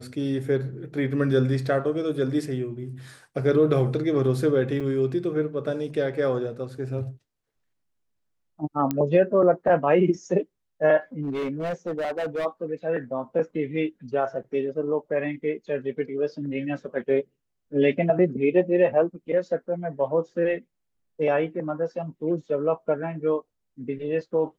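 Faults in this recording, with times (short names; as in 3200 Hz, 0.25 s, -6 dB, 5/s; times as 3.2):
4.8–4.81 gap 5.1 ms
8.91 pop -12 dBFS
11.22–12.46 clipped -24.5 dBFS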